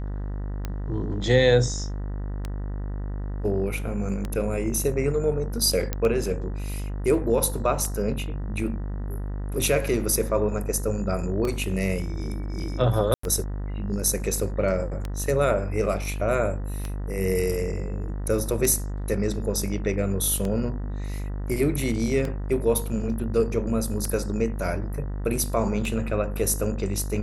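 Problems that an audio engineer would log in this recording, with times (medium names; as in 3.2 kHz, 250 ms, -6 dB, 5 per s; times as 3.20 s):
buzz 50 Hz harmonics 39 -30 dBFS
tick 33 1/3 rpm -16 dBFS
5.93 s: pop -11 dBFS
13.14–13.23 s: dropout 94 ms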